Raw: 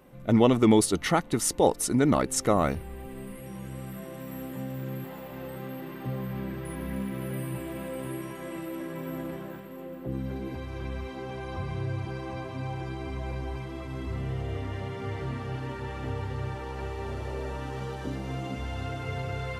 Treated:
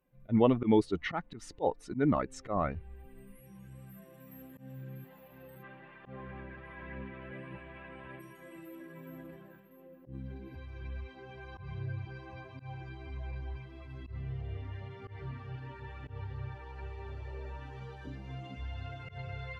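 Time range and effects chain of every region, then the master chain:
0:05.62–0:08.19: ceiling on every frequency bin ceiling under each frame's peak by 13 dB + low-pass filter 3,000 Hz
whole clip: spectral dynamics exaggerated over time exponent 1.5; treble cut that deepens with the level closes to 2,300 Hz, closed at −26 dBFS; volume swells 102 ms; level −2 dB

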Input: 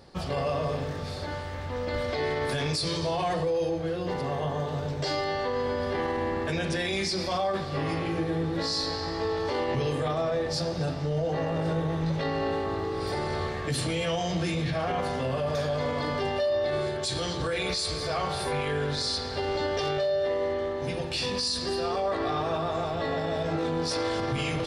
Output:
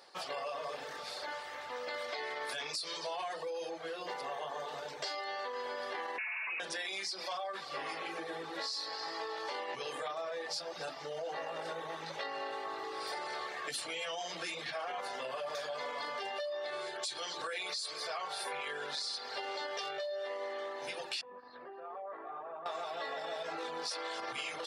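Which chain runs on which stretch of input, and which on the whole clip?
0:06.18–0:06.60: hard clipping −30 dBFS + voice inversion scrambler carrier 2,700 Hz
0:21.21–0:22.66: Bessel low-pass filter 1,200 Hz, order 4 + downward compressor 4 to 1, threshold −36 dBFS
whole clip: reverb reduction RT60 0.56 s; high-pass filter 740 Hz 12 dB per octave; downward compressor, threshold −36 dBFS

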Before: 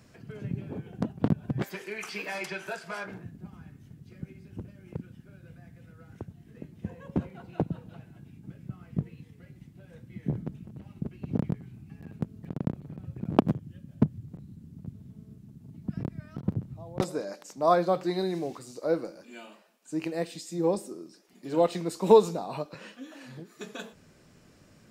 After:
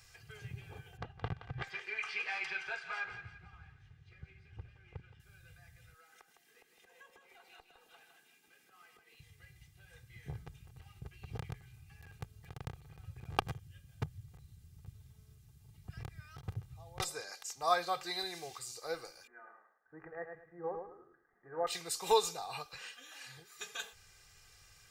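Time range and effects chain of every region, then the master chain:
0:00.97–0:05.20: low-pass filter 2,800 Hz + feedback echo with a high-pass in the loop 171 ms, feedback 42%, high-pass 920 Hz, level −9 dB
0:05.94–0:09.20: Butterworth high-pass 230 Hz + downward compressor, threshold −49 dBFS + single-tap delay 158 ms −7 dB
0:19.27–0:21.67: Chebyshev low-pass with heavy ripple 1,900 Hz, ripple 3 dB + repeating echo 107 ms, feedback 25%, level −6 dB
whole clip: guitar amp tone stack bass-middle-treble 10-0-10; comb filter 2.5 ms, depth 71%; level +3.5 dB

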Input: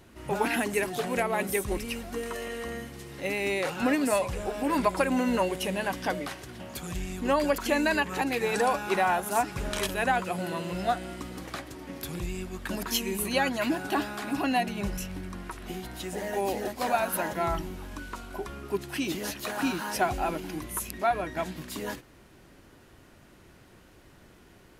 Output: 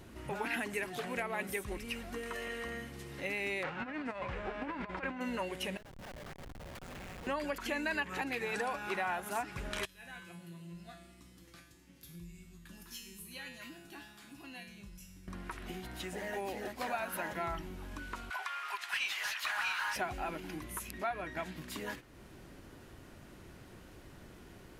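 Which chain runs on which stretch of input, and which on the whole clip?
0:03.62–0:05.20: spectral envelope flattened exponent 0.6 + low-pass filter 1,900 Hz + compressor whose output falls as the input rises −29 dBFS, ratio −0.5
0:05.77–0:07.27: Butterworth high-pass 450 Hz 96 dB per octave + downward compressor, threshold −42 dBFS + comparator with hysteresis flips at −42 dBFS
0:09.85–0:15.28: parametric band 670 Hz −12.5 dB 2.5 octaves + tuned comb filter 170 Hz, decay 0.77 s, mix 90%
0:18.30–0:19.96: high-pass filter 870 Hz 24 dB per octave + mid-hump overdrive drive 14 dB, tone 4,700 Hz, clips at −20.5 dBFS
whole clip: low-shelf EQ 390 Hz +3 dB; downward compressor 2 to 1, threshold −48 dBFS; dynamic equaliser 2,000 Hz, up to +8 dB, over −57 dBFS, Q 0.72

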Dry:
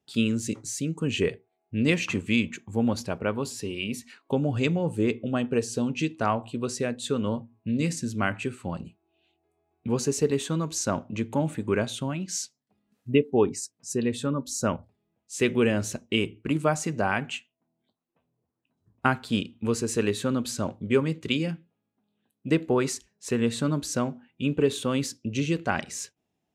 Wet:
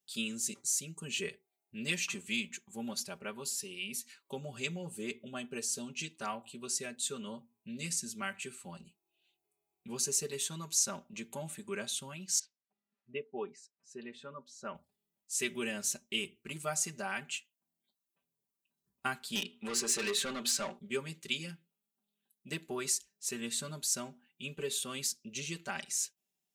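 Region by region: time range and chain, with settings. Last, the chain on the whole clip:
0:12.39–0:14.75: low-pass filter 1,900 Hz + low-shelf EQ 230 Hz −11.5 dB
0:19.35–0:20.79: high-shelf EQ 3,500 Hz −9.5 dB + mains-hum notches 60/120/180/240/300/360/420/480 Hz + mid-hump overdrive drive 21 dB, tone 4,300 Hz, clips at −13 dBFS
whole clip: first-order pre-emphasis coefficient 0.9; comb filter 5.1 ms, depth 93%

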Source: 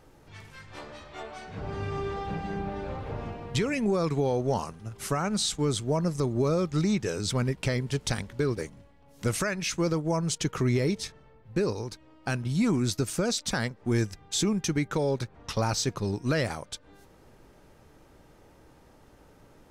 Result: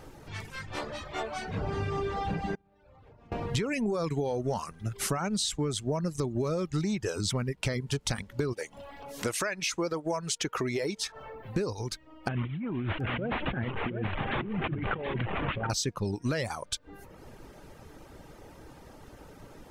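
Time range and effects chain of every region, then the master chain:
0:02.55–0:03.32: noise gate −29 dBFS, range −24 dB + downward compressor, threshold −57 dBFS
0:08.53–0:11.56: bass and treble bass −13 dB, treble −2 dB + upward compression, threshold −38 dBFS
0:12.28–0:15.70: linear delta modulator 16 kbit/s, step −35 dBFS + compressor whose output falls as the input rises −34 dBFS + single-tap delay 724 ms −6.5 dB
whole clip: reverb reduction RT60 0.66 s; downward compressor 4 to 1, threshold −37 dBFS; level +8 dB

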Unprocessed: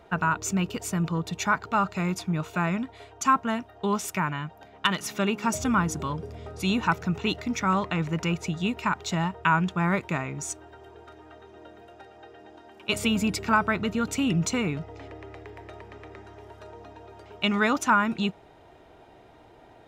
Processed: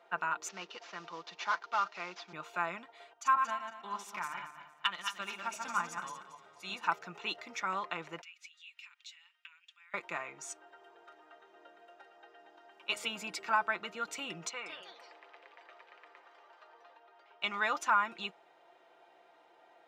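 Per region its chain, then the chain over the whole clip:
0:00.48–0:02.33: variable-slope delta modulation 32 kbit/s + high-pass filter 170 Hz + low-shelf EQ 440 Hz −5.5 dB
0:03.13–0:06.84: feedback delay that plays each chunk backwards 115 ms, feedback 54%, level −3 dB + parametric band 420 Hz −6.5 dB 1 octave + expander for the loud parts, over −32 dBFS
0:08.21–0:09.94: downward compressor 5 to 1, threshold −30 dBFS + four-pole ladder high-pass 2,100 Hz, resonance 40%
0:14.49–0:17.42: high-pass filter 900 Hz 6 dB per octave + high-frequency loss of the air 140 metres + delay with pitch and tempo change per echo 169 ms, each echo +4 semitones, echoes 3, each echo −6 dB
whole clip: high-pass filter 620 Hz 12 dB per octave; high-shelf EQ 8,100 Hz −11 dB; comb filter 5.8 ms, depth 46%; level −6.5 dB

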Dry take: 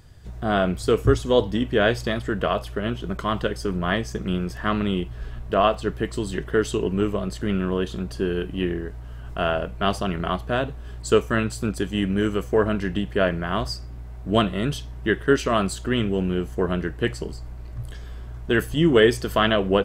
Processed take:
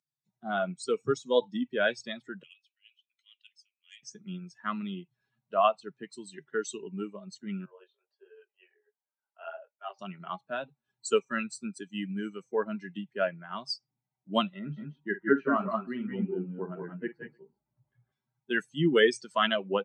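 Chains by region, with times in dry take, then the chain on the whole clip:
0:02.43–0:04.03: four-pole ladder high-pass 2,200 Hz, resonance 50% + saturating transformer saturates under 3,300 Hz
0:07.65–0:09.99: Chebyshev band-pass filter 410–7,400 Hz, order 5 + chorus effect 1.4 Hz, delay 18.5 ms, depth 5.9 ms + high-frequency loss of the air 240 metres
0:14.59–0:18.12: low-pass filter 1,800 Hz + multi-tap delay 47/171/186/204/307 ms −7/−8/−4.5/−6/−16.5 dB
whole clip: spectral dynamics exaggerated over time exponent 2; Chebyshev band-pass filter 140–8,400 Hz, order 5; low-shelf EQ 460 Hz −5.5 dB

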